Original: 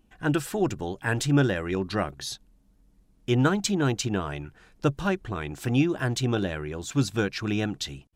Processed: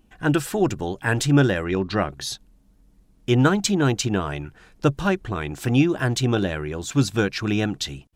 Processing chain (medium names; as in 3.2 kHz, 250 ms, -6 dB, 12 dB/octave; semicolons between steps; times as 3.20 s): 1.64–2.11 s: low-pass 5.6 kHz 12 dB/octave; trim +4.5 dB